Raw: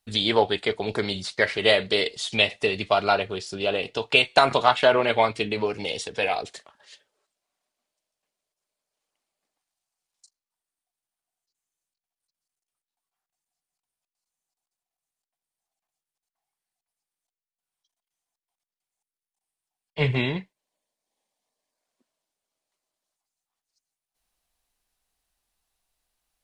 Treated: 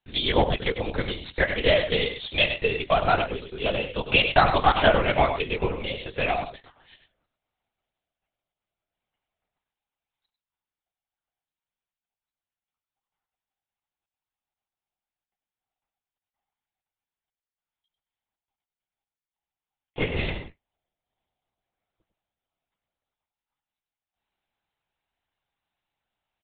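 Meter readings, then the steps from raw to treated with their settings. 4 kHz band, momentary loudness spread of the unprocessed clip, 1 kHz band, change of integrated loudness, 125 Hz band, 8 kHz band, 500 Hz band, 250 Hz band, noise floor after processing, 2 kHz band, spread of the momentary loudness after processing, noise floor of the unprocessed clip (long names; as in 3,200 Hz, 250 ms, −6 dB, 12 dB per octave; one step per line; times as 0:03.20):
−2.0 dB, 10 LU, 0.0 dB, −1.0 dB, +1.5 dB, below −35 dB, −1.5 dB, 0.0 dB, below −85 dBFS, −0.5 dB, 11 LU, below −85 dBFS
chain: high-pass filter 250 Hz
high-frequency loss of the air 63 metres
single-tap delay 101 ms −8.5 dB
linear-prediction vocoder at 8 kHz whisper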